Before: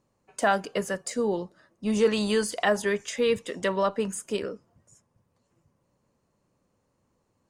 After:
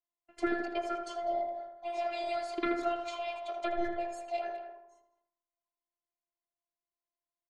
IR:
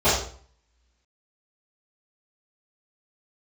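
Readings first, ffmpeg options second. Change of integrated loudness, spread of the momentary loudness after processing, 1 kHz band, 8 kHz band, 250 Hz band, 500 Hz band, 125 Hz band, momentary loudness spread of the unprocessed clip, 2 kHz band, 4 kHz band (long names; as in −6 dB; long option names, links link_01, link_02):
−8.5 dB, 7 LU, −3.5 dB, −20.5 dB, −8.5 dB, −9.0 dB, below −20 dB, 10 LU, −10.0 dB, −11.5 dB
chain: -filter_complex "[0:a]afftfilt=real='real(if(between(b,1,1008),(2*floor((b-1)/48)+1)*48-b,b),0)':imag='imag(if(between(b,1,1008),(2*floor((b-1)/48)+1)*48-b,b),0)*if(between(b,1,1008),-1,1)':win_size=2048:overlap=0.75,bandreject=frequency=95.53:width_type=h:width=4,bandreject=frequency=191.06:width_type=h:width=4,bandreject=frequency=286.59:width_type=h:width=4,bandreject=frequency=382.12:width_type=h:width=4,bandreject=frequency=477.65:width_type=h:width=4,bandreject=frequency=573.18:width_type=h:width=4,bandreject=frequency=668.71:width_type=h:width=4,bandreject=frequency=764.24:width_type=h:width=4,bandreject=frequency=859.77:width_type=h:width=4,bandreject=frequency=955.3:width_type=h:width=4,bandreject=frequency=1050.83:width_type=h:width=4,bandreject=frequency=1146.36:width_type=h:width=4,bandreject=frequency=1241.89:width_type=h:width=4,bandreject=frequency=1337.42:width_type=h:width=4,bandreject=frequency=1432.95:width_type=h:width=4,bandreject=frequency=1528.48:width_type=h:width=4,bandreject=frequency=1624.01:width_type=h:width=4,bandreject=frequency=1719.54:width_type=h:width=4,bandreject=frequency=1815.07:width_type=h:width=4,bandreject=frequency=1910.6:width_type=h:width=4,bandreject=frequency=2006.13:width_type=h:width=4,bandreject=frequency=2101.66:width_type=h:width=4,bandreject=frequency=2197.19:width_type=h:width=4,bandreject=frequency=2292.72:width_type=h:width=4,bandreject=frequency=2388.25:width_type=h:width=4,bandreject=frequency=2483.78:width_type=h:width=4,bandreject=frequency=2579.31:width_type=h:width=4,bandreject=frequency=2674.84:width_type=h:width=4,bandreject=frequency=2770.37:width_type=h:width=4,bandreject=frequency=2865.9:width_type=h:width=4,bandreject=frequency=2961.43:width_type=h:width=4,bandreject=frequency=3056.96:width_type=h:width=4,bandreject=frequency=3152.49:width_type=h:width=4,bandreject=frequency=3248.02:width_type=h:width=4,bandreject=frequency=3343.55:width_type=h:width=4,bandreject=frequency=3439.08:width_type=h:width=4,bandreject=frequency=3534.61:width_type=h:width=4,bandreject=frequency=3630.14:width_type=h:width=4,bandreject=frequency=3725.67:width_type=h:width=4,agate=range=-25dB:threshold=-59dB:ratio=16:detection=peak,lowpass=3200,acompressor=threshold=-25dB:ratio=5,asplit=2[link_01][link_02];[link_02]adelay=80,lowpass=frequency=1800:poles=1,volume=-5dB,asplit=2[link_03][link_04];[link_04]adelay=80,lowpass=frequency=1800:poles=1,volume=0.55,asplit=2[link_05][link_06];[link_06]adelay=80,lowpass=frequency=1800:poles=1,volume=0.55,asplit=2[link_07][link_08];[link_08]adelay=80,lowpass=frequency=1800:poles=1,volume=0.55,asplit=2[link_09][link_10];[link_10]adelay=80,lowpass=frequency=1800:poles=1,volume=0.55,asplit=2[link_11][link_12];[link_12]adelay=80,lowpass=frequency=1800:poles=1,volume=0.55,asplit=2[link_13][link_14];[link_14]adelay=80,lowpass=frequency=1800:poles=1,volume=0.55[link_15];[link_03][link_05][link_07][link_09][link_11][link_13][link_15]amix=inputs=7:normalize=0[link_16];[link_01][link_16]amix=inputs=2:normalize=0,afftfilt=real='hypot(re,im)*cos(PI*b)':imag='0':win_size=512:overlap=0.75,asplit=2[link_17][link_18];[link_18]adelay=200,highpass=300,lowpass=3400,asoftclip=type=hard:threshold=-26dB,volume=-10dB[link_19];[link_17][link_19]amix=inputs=2:normalize=0"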